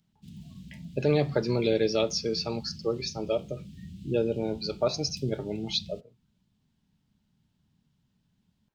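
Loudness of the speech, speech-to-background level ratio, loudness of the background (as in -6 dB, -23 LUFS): -29.0 LUFS, 16.5 dB, -45.5 LUFS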